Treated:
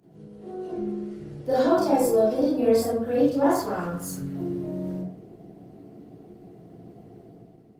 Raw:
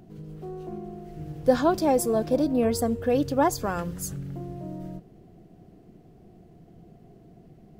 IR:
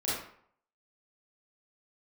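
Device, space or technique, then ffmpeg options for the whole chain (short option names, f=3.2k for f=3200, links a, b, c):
far-field microphone of a smart speaker: -filter_complex "[1:a]atrim=start_sample=2205[a];[0:a][a]afir=irnorm=-1:irlink=0,highpass=110,dynaudnorm=f=150:g=7:m=7.5dB,volume=-8dB" -ar 48000 -c:a libopus -b:a 24k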